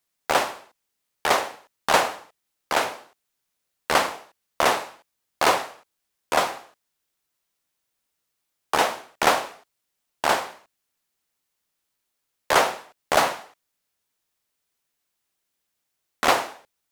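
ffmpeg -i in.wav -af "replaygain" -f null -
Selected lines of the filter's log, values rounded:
track_gain = +3.8 dB
track_peak = 0.402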